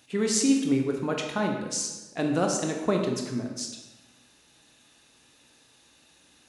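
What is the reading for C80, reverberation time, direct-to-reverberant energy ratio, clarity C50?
6.5 dB, 1.1 s, 2.0 dB, 4.5 dB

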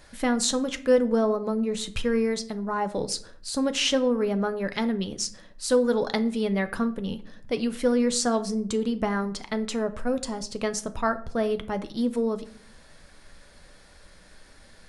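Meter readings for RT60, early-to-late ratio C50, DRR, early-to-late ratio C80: 0.55 s, 15.5 dB, 9.0 dB, 19.5 dB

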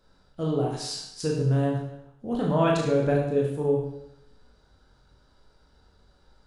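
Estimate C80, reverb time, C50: 6.0 dB, 0.80 s, 2.5 dB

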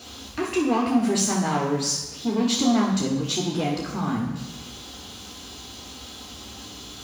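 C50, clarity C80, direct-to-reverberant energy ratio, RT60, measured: 4.0 dB, 6.5 dB, −4.0 dB, 1.0 s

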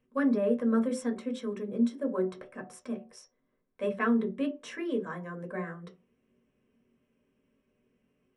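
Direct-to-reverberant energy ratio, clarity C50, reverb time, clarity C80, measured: 1.5 dB, 13.5 dB, non-exponential decay, 19.5 dB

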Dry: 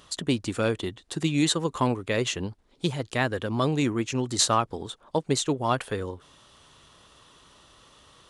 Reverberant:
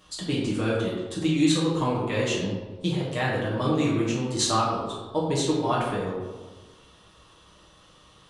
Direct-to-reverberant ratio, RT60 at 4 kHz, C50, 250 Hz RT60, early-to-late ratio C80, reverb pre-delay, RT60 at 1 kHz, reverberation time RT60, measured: −7.0 dB, 0.70 s, 1.0 dB, 1.6 s, 3.5 dB, 4 ms, 1.3 s, 1.3 s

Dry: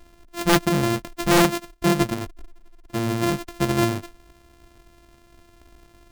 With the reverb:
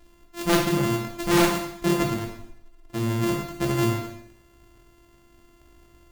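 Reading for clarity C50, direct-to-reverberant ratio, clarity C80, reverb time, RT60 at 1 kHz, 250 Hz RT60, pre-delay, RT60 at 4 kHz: 5.0 dB, 0.0 dB, 8.0 dB, 0.70 s, 0.70 s, 0.65 s, 7 ms, 0.65 s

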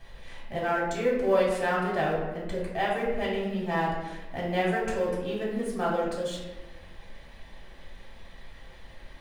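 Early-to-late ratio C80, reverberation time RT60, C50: 4.5 dB, 1.1 s, 1.5 dB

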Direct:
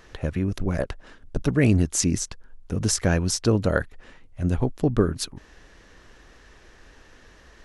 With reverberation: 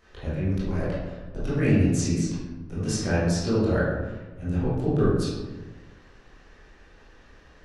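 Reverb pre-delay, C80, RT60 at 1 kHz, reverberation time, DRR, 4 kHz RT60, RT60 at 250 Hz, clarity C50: 17 ms, 2.5 dB, 1.1 s, 1.2 s, −10.5 dB, 0.65 s, 1.4 s, −1.0 dB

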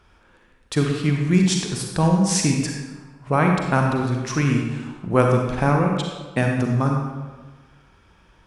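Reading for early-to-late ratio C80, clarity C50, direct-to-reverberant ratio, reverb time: 4.0 dB, 2.0 dB, 1.0 dB, 1.3 s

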